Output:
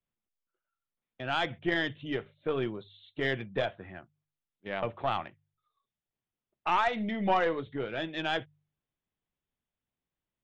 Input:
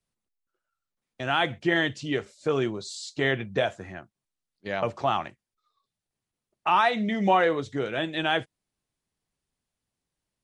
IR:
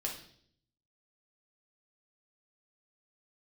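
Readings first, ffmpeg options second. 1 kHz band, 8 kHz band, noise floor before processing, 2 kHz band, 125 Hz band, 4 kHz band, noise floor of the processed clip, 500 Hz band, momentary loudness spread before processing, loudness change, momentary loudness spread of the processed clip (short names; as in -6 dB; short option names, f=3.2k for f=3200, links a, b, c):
-5.5 dB, under -15 dB, under -85 dBFS, -5.5 dB, -5.5 dB, -6.0 dB, under -85 dBFS, -5.5 dB, 13 LU, -5.5 dB, 17 LU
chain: -af "aresample=8000,aresample=44100,bandreject=f=49.84:t=h:w=4,bandreject=f=99.68:t=h:w=4,bandreject=f=149.52:t=h:w=4,aeval=exprs='0.355*(cos(1*acos(clip(val(0)/0.355,-1,1)))-cos(1*PI/2))+0.0316*(cos(4*acos(clip(val(0)/0.355,-1,1)))-cos(4*PI/2))':c=same,volume=-5.5dB"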